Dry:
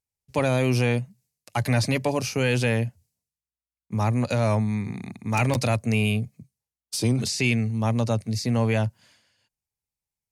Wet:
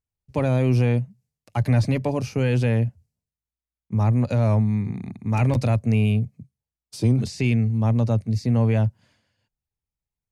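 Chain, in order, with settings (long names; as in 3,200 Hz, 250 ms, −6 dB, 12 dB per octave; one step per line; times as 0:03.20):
spectral tilt −2.5 dB per octave
level −3 dB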